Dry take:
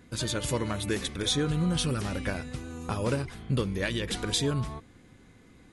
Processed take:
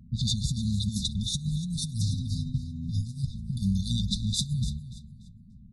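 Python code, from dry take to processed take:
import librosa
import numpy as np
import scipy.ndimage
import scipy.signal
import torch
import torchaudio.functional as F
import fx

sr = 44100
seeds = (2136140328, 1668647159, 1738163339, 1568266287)

y = fx.env_lowpass(x, sr, base_hz=410.0, full_db=-24.0)
y = fx.comb(y, sr, ms=7.5, depth=0.84, at=(1.77, 3.25))
y = fx.over_compress(y, sr, threshold_db=-30.0, ratio=-0.5)
y = fx.brickwall_bandstop(y, sr, low_hz=240.0, high_hz=3500.0)
y = fx.echo_feedback(y, sr, ms=291, feedback_pct=28, wet_db=-14.5)
y = y * librosa.db_to_amplitude(5.0)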